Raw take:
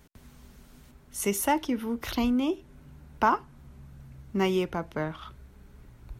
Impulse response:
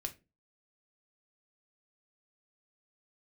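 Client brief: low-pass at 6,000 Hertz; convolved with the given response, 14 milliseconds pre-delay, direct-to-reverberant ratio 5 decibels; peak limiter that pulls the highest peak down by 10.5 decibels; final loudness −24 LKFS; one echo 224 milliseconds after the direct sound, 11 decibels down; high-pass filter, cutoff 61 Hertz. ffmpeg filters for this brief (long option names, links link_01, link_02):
-filter_complex "[0:a]highpass=61,lowpass=6000,alimiter=limit=-21.5dB:level=0:latency=1,aecho=1:1:224:0.282,asplit=2[link_01][link_02];[1:a]atrim=start_sample=2205,adelay=14[link_03];[link_02][link_03]afir=irnorm=-1:irlink=0,volume=-4dB[link_04];[link_01][link_04]amix=inputs=2:normalize=0,volume=8dB"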